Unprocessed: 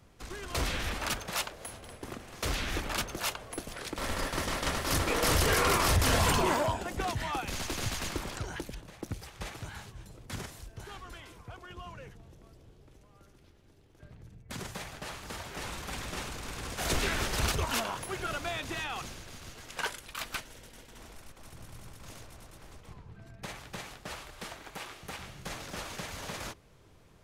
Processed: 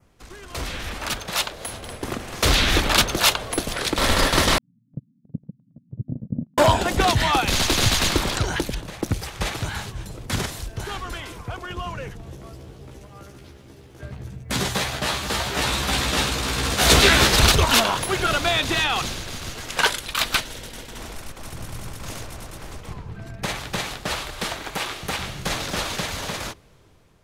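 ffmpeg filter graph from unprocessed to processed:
-filter_complex "[0:a]asettb=1/sr,asplit=3[s0][s1][s2];[s0]atrim=end=4.584[s3];[s1]atrim=start=4.58:end=6.58,asetpts=PTS-STARTPTS,afade=t=in:d=0.004:c=qsin,afade=t=out:st=1.996:d=0.004:c=qsin,asuperpass=centerf=170:order=12:qfactor=1.2,agate=range=0.0224:threshold=0.02:ratio=16:release=100:detection=peak[s4];[s2]atrim=start=6.576[s5];[s3][s4]acrossfade=d=0.004:c1=hsin:c2=qsin[s6];[s6][s5]acrossfade=d=0.004:c1=qsin:c2=hsin,asettb=1/sr,asplit=3[s7][s8][s9];[s7]atrim=end=12.254[s10];[s8]atrim=start=12.25:end=17.36,asetpts=PTS-STARTPTS,afade=t=in:d=0.004:c=qsin,afade=t=out:st=5.106:d=0.004:c=qsin,highpass=43,asplit=2[s11][s12];[s12]adelay=15,volume=0.75[s13];[s11][s13]amix=inputs=2:normalize=0,atrim=end_sample=225351[s14];[s9]atrim=start=17.356[s15];[s10][s14]acrossfade=d=0.004:c1=hsin:c2=qsin[s16];[s16][s15]acrossfade=d=0.004:c1=qsin:c2=hsin,dynaudnorm=f=450:g=7:m=5.01,adynamicequalizer=threshold=0.0141:dfrequency=3800:dqfactor=2.2:tfrequency=3800:tqfactor=2.2:attack=5:release=100:ratio=0.375:range=3:mode=boostabove:tftype=bell"

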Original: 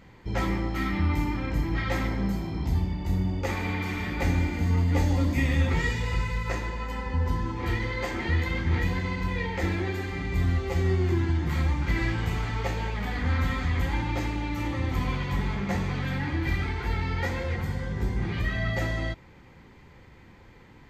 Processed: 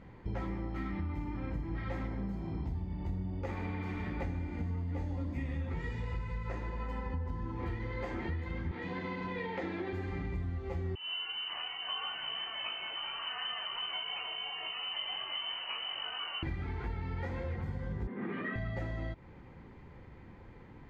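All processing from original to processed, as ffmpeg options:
-filter_complex "[0:a]asettb=1/sr,asplit=3[s0][s1][s2];[s0]atrim=end=8.714[s3];[s1]atrim=start=8.71:end=9.93,asetpts=PTS-STARTPTS,afade=t=in:d=0.004:c=qsin,afade=t=out:st=1.216:d=0.004:c=qsin,highpass=230,lowpass=5700,equalizer=f=3600:w=2.2:g=4[s4];[s2]atrim=start=9.926[s5];[s3][s4]acrossfade=d=0.004:c1=hsin:c2=qsin[s6];[s6][s5]acrossfade=d=0.004:c1=qsin:c2=hsin,asettb=1/sr,asplit=3[s7][s8][s9];[s7]atrim=end=10.954[s10];[s8]atrim=start=10.95:end=16.43,asetpts=PTS-STARTPTS,afade=t=in:d=0.004:c=qsin,afade=t=out:st=5.476:d=0.004:c=qsin,flanger=delay=18.5:depth=5:speed=2.9,lowpass=f=2600:t=q:w=0.5098,lowpass=f=2600:t=q:w=0.6013,lowpass=f=2600:t=q:w=0.9,lowpass=f=2600:t=q:w=2.563,afreqshift=-3100[s11];[s9]atrim=start=16.426[s12];[s10][s11]acrossfade=d=0.004:c1=hsin:c2=qsin[s13];[s13][s12]acrossfade=d=0.004:c1=qsin:c2=hsin,asettb=1/sr,asplit=3[s14][s15][s16];[s14]atrim=end=18.074[s17];[s15]atrim=start=18.07:end=18.56,asetpts=PTS-STARTPTS,afade=t=in:d=0.004:c=qsin,afade=t=out:st=0.486:d=0.004:c=qsin,asoftclip=type=hard:threshold=0.0841,highpass=f=210:w=0.5412,highpass=f=210:w=1.3066,equalizer=f=230:t=q:w=4:g=9,equalizer=f=440:t=q:w=4:g=5,equalizer=f=810:t=q:w=4:g=-3,equalizer=f=1200:t=q:w=4:g=6,equalizer=f=1800:t=q:w=4:g=5,lowpass=f=3200:w=0.5412,lowpass=f=3200:w=1.3066[s18];[s16]atrim=start=18.556[s19];[s17][s18]acrossfade=d=0.004:c1=hsin:c2=qsin[s20];[s20][s19]acrossfade=d=0.004:c1=qsin:c2=hsin,lowpass=f=1200:p=1,acompressor=threshold=0.02:ratio=6"

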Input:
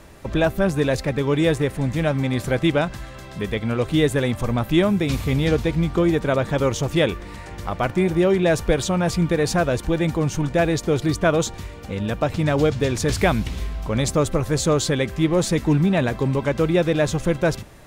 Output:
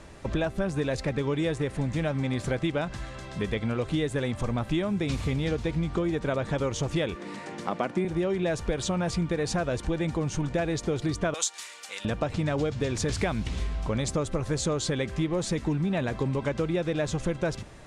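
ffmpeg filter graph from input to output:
-filter_complex "[0:a]asettb=1/sr,asplit=3[s0][s1][s2];[s0]atrim=end=7.154[s3];[s1]atrim=start=7.15:end=8.05,asetpts=PTS-STARTPTS,afade=t=in:d=0.004:c=qsin,afade=t=out:st=0.896:d=0.004:c=qsin,highpass=f=200:w=0.5412,highpass=f=200:w=1.3066,lowshelf=f=290:g=9.5[s4];[s2]atrim=start=8.046[s5];[s3][s4]acrossfade=d=0.004:c1=hsin:c2=qsin[s6];[s6][s5]acrossfade=d=0.004:c1=qsin:c2=hsin,asettb=1/sr,asplit=3[s7][s8][s9];[s7]atrim=end=11.344[s10];[s8]atrim=start=11.34:end=12.05,asetpts=PTS-STARTPTS,afade=t=in:d=0.004:c=qsin,afade=t=out:st=0.706:d=0.004:c=qsin,highpass=1100,aemphasis=mode=production:type=75kf[s11];[s9]atrim=start=12.046[s12];[s10][s11]acrossfade=d=0.004:c1=hsin:c2=qsin[s13];[s13][s12]acrossfade=d=0.004:c1=qsin:c2=hsin,lowpass=f=9400:w=0.5412,lowpass=f=9400:w=1.3066,acompressor=threshold=0.0794:ratio=6,volume=0.794"

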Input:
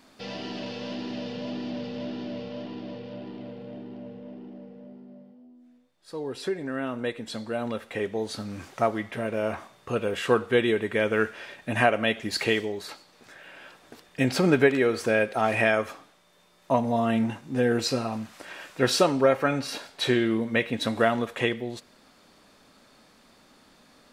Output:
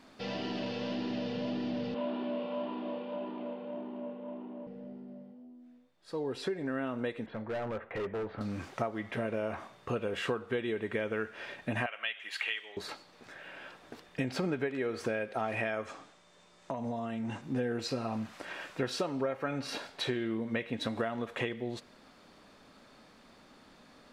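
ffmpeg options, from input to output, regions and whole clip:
-filter_complex "[0:a]asettb=1/sr,asplit=3[s0][s1][s2];[s0]atrim=end=1.944[s3];[s1]atrim=start=1.94:end=4.67,asetpts=PTS-STARTPTS,afade=t=in:d=0.004:c=qsin,afade=t=out:st=2.726:d=0.004:c=qsin,highpass=f=220:w=0.5412,highpass=f=220:w=1.3066,equalizer=f=290:t=q:w=4:g=-7,equalizer=f=1000:t=q:w=4:g=10,equalizer=f=1900:t=q:w=4:g=-6,lowpass=f=3400:w=0.5412,lowpass=f=3400:w=1.3066,asplit=2[s4][s5];[s5]adelay=29,volume=0.668[s6];[s4][s6]amix=inputs=2:normalize=0,atrim=end_sample=120393[s7];[s2]atrim=start=4.666[s8];[s3][s7]acrossfade=d=0.004:c1=hsin:c2=qsin[s9];[s9][s8]acrossfade=d=0.004:c1=qsin:c2=hsin,asettb=1/sr,asplit=3[s10][s11][s12];[s10]atrim=end=7.264[s13];[s11]atrim=start=7.26:end=8.41,asetpts=PTS-STARTPTS,afade=t=in:d=0.004:c=qsin,afade=t=out:st=1.146:d=0.004:c=qsin,lowpass=f=2100:w=0.5412,lowpass=f=2100:w=1.3066,equalizer=f=250:t=o:w=0.28:g=-12.5,volume=39.8,asoftclip=hard,volume=0.0251[s14];[s12]atrim=start=8.406[s15];[s13][s14]acrossfade=d=0.004:c1=hsin:c2=qsin[s16];[s16][s15]acrossfade=d=0.004:c1=qsin:c2=hsin,asettb=1/sr,asplit=3[s17][s18][s19];[s17]atrim=end=11.864[s20];[s18]atrim=start=11.86:end=12.77,asetpts=PTS-STARTPTS,afade=t=in:d=0.004:c=qsin,afade=t=out:st=0.906:d=0.004:c=qsin,highpass=1400,highshelf=f=3800:t=q:w=3:g=-6[s21];[s19]atrim=start=12.766[s22];[s20][s21]acrossfade=d=0.004:c1=hsin:c2=qsin[s23];[s23][s22]acrossfade=d=0.004:c1=qsin:c2=hsin,asettb=1/sr,asplit=3[s24][s25][s26];[s24]atrim=end=15.854[s27];[s25]atrim=start=15.85:end=17.42,asetpts=PTS-STARTPTS,afade=t=in:d=0.004:c=qsin,afade=t=out:st=1.566:d=0.004:c=qsin,lowpass=f=7800:t=q:w=2.3,acompressor=threshold=0.0282:ratio=12:attack=3.2:release=140:knee=1:detection=peak[s28];[s26]atrim=start=17.416[s29];[s27][s28]acrossfade=d=0.004:c1=hsin:c2=qsin[s30];[s30][s29]acrossfade=d=0.004:c1=qsin:c2=hsin,acompressor=threshold=0.0316:ratio=6,lowpass=f=3900:p=1"

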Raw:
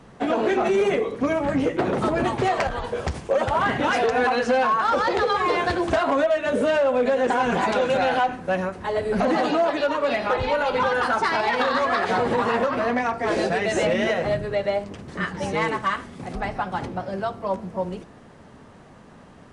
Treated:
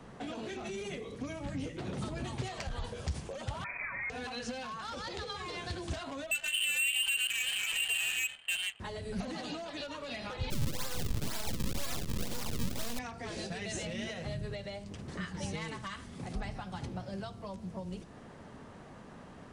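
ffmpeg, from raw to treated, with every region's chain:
-filter_complex "[0:a]asettb=1/sr,asplit=3[s0][s1][s2];[s0]atrim=end=3.644[s3];[s1]atrim=start=3.64:end=4.1,asetpts=PTS-STARTPTS,afade=t=in:d=0.004:c=qsin,afade=t=out:st=0.456:d=0.004:c=qsin,acrusher=bits=3:mix=0:aa=0.5,lowpass=f=2200:t=q:w=0.5098,lowpass=f=2200:t=q:w=0.6013,lowpass=f=2200:t=q:w=0.9,lowpass=f=2200:t=q:w=2.563,afreqshift=-2600[s4];[s2]atrim=start=4.096[s5];[s3][s4]acrossfade=d=0.004:c1=hsin:c2=qsin[s6];[s6][s5]acrossfade=d=0.004:c1=qsin:c2=hsin,asettb=1/sr,asplit=3[s7][s8][s9];[s7]atrim=end=6.314[s10];[s8]atrim=start=6.31:end=8.8,asetpts=PTS-STARTPTS,afade=t=in:d=0.004:c=qsin,afade=t=out:st=2.486:d=0.004:c=qsin,lowpass=f=2800:t=q:w=0.5098,lowpass=f=2800:t=q:w=0.6013,lowpass=f=2800:t=q:w=0.9,lowpass=f=2800:t=q:w=2.563,afreqshift=-3300,adynamicsmooth=sensitivity=2.5:basefreq=790[s11];[s9]atrim=start=8.796[s12];[s10][s11]acrossfade=d=0.004:c1=hsin:c2=qsin[s13];[s13][s12]acrossfade=d=0.004:c1=qsin:c2=hsin,asettb=1/sr,asplit=3[s14][s15][s16];[s14]atrim=end=10.504[s17];[s15]atrim=start=10.5:end=12.99,asetpts=PTS-STARTPTS,afade=t=in:d=0.004:c=qsin,afade=t=out:st=2.486:d=0.004:c=qsin,equalizer=f=590:w=6.2:g=5.5,acrusher=samples=35:mix=1:aa=0.000001:lfo=1:lforange=56:lforate=2,aeval=exprs='max(val(0),0)':c=same[s18];[s16]atrim=start=12.986[s19];[s17][s18]acrossfade=d=0.004:c1=hsin:c2=qsin[s20];[s20][s19]acrossfade=d=0.004:c1=qsin:c2=hsin,alimiter=limit=0.141:level=0:latency=1:release=133,acrossover=split=180|3000[s21][s22][s23];[s22]acompressor=threshold=0.00794:ratio=4[s24];[s21][s24][s23]amix=inputs=3:normalize=0,volume=0.708"

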